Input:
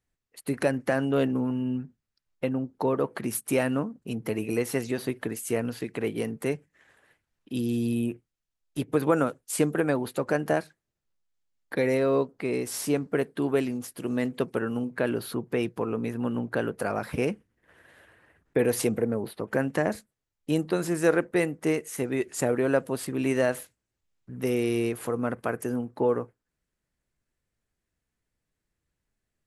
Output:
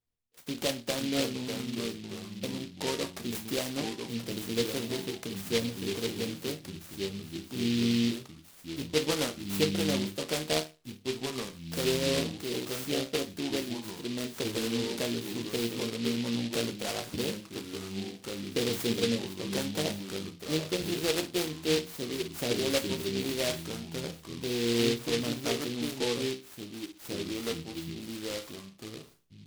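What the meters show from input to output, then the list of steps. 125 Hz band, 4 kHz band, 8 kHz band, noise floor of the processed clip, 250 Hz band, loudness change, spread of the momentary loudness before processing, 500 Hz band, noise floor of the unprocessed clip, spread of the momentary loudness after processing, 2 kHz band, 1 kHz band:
-4.0 dB, +11.5 dB, +1.0 dB, -54 dBFS, -4.0 dB, -4.0 dB, 8 LU, -5.5 dB, -85 dBFS, 11 LU, -3.5 dB, -7.0 dB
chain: resonator bank D#2 minor, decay 0.27 s; echoes that change speed 0.429 s, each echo -3 st, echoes 2, each echo -6 dB; noise-modulated delay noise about 3300 Hz, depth 0.18 ms; gain +5 dB

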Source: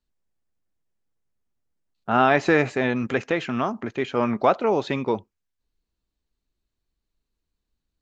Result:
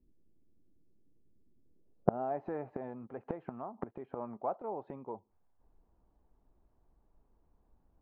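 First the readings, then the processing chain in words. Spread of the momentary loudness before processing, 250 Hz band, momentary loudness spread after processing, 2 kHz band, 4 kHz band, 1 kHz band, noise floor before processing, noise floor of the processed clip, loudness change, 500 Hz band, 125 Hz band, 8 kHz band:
9 LU, -17.0 dB, 11 LU, -31.5 dB, under -40 dB, -16.0 dB, -83 dBFS, -73 dBFS, -17.0 dB, -15.0 dB, -14.0 dB, n/a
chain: low-pass sweep 320 Hz -> 840 Hz, 1.62–2.44; flipped gate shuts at -22 dBFS, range -32 dB; gain +10.5 dB

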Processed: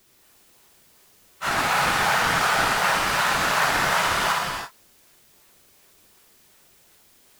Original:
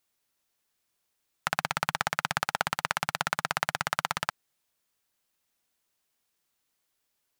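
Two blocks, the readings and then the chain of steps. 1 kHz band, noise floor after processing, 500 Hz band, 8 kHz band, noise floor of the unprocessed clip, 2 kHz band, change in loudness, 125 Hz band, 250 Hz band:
+10.0 dB, -57 dBFS, +11.5 dB, +10.0 dB, -79 dBFS, +10.0 dB, +9.5 dB, +7.0 dB, +10.5 dB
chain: phase scrambler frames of 0.1 s; low shelf 210 Hz -10.5 dB; added noise white -67 dBFS; bell 390 Hz +4 dB 0.28 oct; non-linear reverb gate 0.37 s flat, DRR -2 dB; in parallel at -11 dB: decimation with a swept rate 26×, swing 160% 2.7 Hz; on the sum: gain +5.5 dB

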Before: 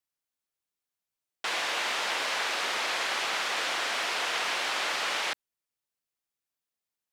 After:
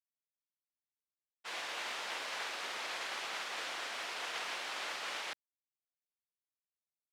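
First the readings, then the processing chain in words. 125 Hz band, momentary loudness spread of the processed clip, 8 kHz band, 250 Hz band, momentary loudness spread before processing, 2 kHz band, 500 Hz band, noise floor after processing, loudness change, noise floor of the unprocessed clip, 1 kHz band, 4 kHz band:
n/a, 3 LU, -10.5 dB, -10.5 dB, 2 LU, -10.5 dB, -10.5 dB, under -85 dBFS, -10.5 dB, under -85 dBFS, -10.5 dB, -10.5 dB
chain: expander -24 dBFS; gain -4.5 dB

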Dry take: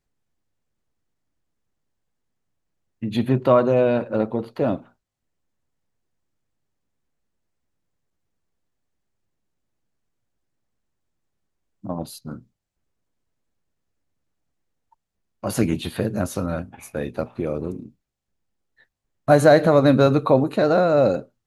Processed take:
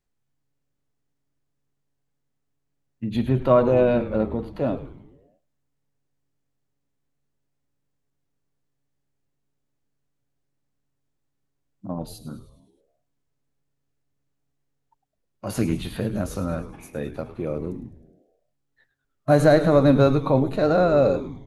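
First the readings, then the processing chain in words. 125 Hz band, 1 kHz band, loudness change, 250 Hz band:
0.0 dB, -3.0 dB, -1.5 dB, -1.0 dB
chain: harmonic-percussive split percussive -6 dB; frequency-shifting echo 0.104 s, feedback 54%, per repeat -140 Hz, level -13 dB

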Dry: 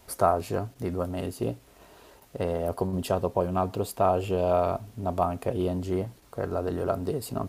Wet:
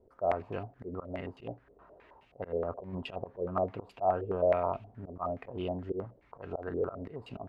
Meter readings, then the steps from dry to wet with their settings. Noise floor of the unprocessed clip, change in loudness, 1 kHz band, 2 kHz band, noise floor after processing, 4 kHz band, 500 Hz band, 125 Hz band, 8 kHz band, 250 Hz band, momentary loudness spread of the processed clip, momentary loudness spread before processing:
-56 dBFS, -6.5 dB, -7.0 dB, -4.0 dB, -65 dBFS, -8.5 dB, -5.5 dB, -10.5 dB, under -30 dB, -9.5 dB, 15 LU, 8 LU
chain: auto swell 0.116 s; stepped low-pass 9.5 Hz 450–2700 Hz; gain -9 dB

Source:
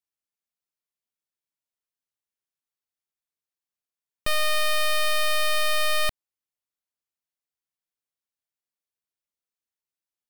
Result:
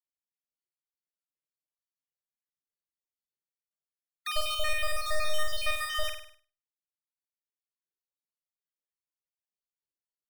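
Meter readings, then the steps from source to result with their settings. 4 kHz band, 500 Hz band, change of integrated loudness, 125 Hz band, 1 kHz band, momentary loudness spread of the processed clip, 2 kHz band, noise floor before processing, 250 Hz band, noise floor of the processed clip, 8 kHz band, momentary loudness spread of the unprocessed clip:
-7.0 dB, -7.5 dB, -7.5 dB, -2.5 dB, -6.5 dB, 6 LU, -7.5 dB, under -85 dBFS, under -10 dB, under -85 dBFS, -8.0 dB, 4 LU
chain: random spectral dropouts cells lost 61%; reverb removal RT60 1.5 s; high shelf 8800 Hz -4 dB; flutter echo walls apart 8.6 m, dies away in 0.56 s; spectral noise reduction 14 dB; ending taper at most 180 dB/s; gain -2 dB

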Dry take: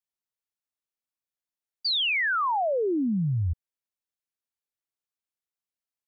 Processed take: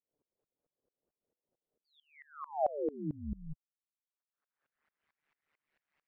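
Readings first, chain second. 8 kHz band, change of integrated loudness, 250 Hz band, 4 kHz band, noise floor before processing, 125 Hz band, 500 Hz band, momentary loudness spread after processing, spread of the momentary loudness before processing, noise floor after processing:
n/a, -12.5 dB, -12.5 dB, under -40 dB, under -85 dBFS, -17.5 dB, -8.0 dB, 19 LU, 8 LU, under -85 dBFS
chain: spectral noise reduction 16 dB; HPF 59 Hz; reverb removal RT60 0.68 s; upward compressor, threshold -34 dBFS; ring modulator 74 Hz; low-pass sweep 490 Hz -> 2000 Hz, 1.91–5.12; dB-ramp tremolo swelling 4.5 Hz, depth 24 dB; gain -2.5 dB

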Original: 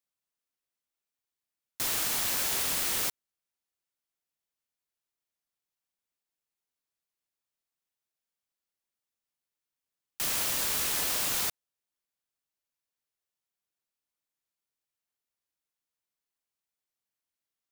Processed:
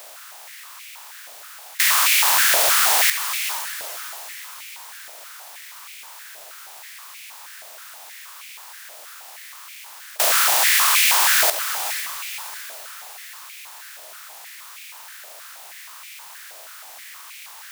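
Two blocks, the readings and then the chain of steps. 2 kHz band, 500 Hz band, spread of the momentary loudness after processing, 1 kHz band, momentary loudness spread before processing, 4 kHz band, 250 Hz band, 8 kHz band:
+18.0 dB, +13.0 dB, 21 LU, +18.0 dB, 6 LU, +13.5 dB, n/a, +12.5 dB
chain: per-bin compression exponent 0.4; diffused feedback echo 0.488 s, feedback 46%, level -9.5 dB; stepped high-pass 6.3 Hz 630–2300 Hz; gain +7.5 dB

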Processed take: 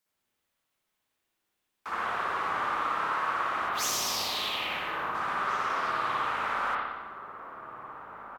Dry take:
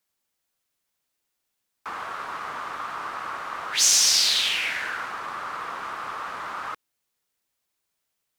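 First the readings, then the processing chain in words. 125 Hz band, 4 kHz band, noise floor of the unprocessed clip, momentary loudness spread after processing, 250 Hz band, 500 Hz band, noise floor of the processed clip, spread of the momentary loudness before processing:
n/a, -10.5 dB, -80 dBFS, 15 LU, +3.5 dB, +3.5 dB, -81 dBFS, 18 LU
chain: outdoor echo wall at 290 m, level -9 dB; spectral gain 3.69–5.15, 1300–11000 Hz -10 dB; spring tank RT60 1.1 s, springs 56 ms, chirp 35 ms, DRR -6 dB; gain -4 dB

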